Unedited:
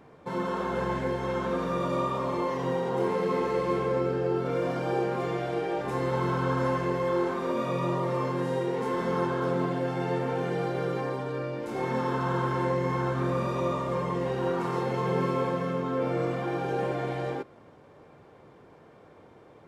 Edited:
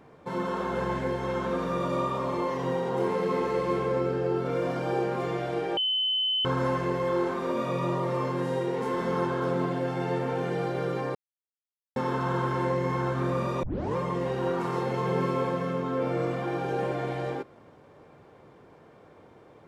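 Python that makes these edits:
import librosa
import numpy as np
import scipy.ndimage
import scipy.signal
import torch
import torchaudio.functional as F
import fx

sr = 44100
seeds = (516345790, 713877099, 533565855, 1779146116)

y = fx.edit(x, sr, fx.bleep(start_s=5.77, length_s=0.68, hz=3040.0, db=-23.5),
    fx.silence(start_s=11.15, length_s=0.81),
    fx.tape_start(start_s=13.63, length_s=0.33), tone=tone)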